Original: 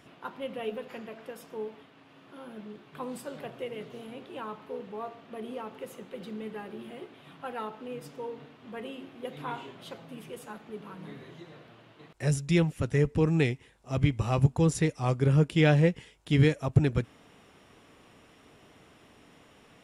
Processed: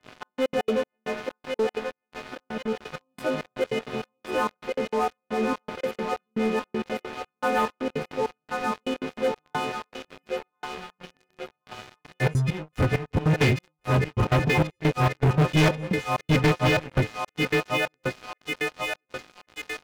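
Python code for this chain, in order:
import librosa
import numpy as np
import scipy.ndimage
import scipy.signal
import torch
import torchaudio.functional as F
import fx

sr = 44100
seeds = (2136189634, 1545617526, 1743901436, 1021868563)

y = fx.freq_snap(x, sr, grid_st=3)
y = fx.step_gate(y, sr, bpm=198, pattern='xxx..x.x.xx...', floor_db=-24.0, edge_ms=4.5)
y = fx.stiff_resonator(y, sr, f0_hz=88.0, decay_s=0.37, stiffness=0.008, at=(9.72, 11.51))
y = fx.echo_thinned(y, sr, ms=1084, feedback_pct=63, hz=590.0, wet_db=-4.5)
y = fx.spec_gate(y, sr, threshold_db=-25, keep='strong')
y = fx.air_absorb(y, sr, metres=480.0)
y = fx.leveller(y, sr, passes=5)
y = y * 10.0 ** (-3.0 / 20.0)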